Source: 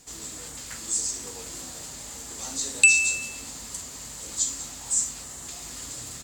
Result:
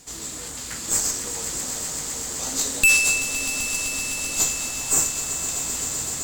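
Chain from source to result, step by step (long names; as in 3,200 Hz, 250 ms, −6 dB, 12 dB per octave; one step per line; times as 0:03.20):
tube saturation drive 21 dB, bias 0.7
echo that builds up and dies away 128 ms, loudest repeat 5, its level −11.5 dB
level +8.5 dB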